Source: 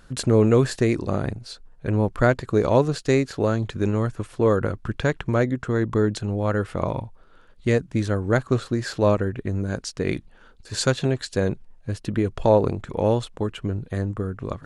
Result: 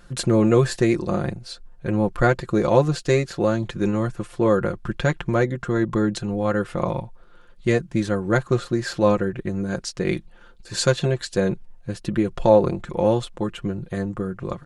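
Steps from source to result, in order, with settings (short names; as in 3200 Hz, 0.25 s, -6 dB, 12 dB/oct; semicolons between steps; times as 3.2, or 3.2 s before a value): comb 5.7 ms, depth 65%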